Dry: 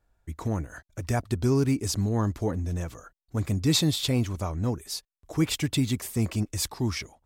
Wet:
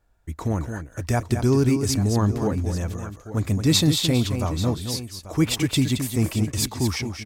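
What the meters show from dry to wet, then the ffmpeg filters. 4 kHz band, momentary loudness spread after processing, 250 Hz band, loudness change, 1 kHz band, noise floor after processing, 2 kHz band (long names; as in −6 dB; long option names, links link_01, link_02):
+5.0 dB, 11 LU, +5.0 dB, +4.5 dB, +4.5 dB, −51 dBFS, +4.5 dB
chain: -af "aecho=1:1:220|839:0.398|0.188,volume=4dB"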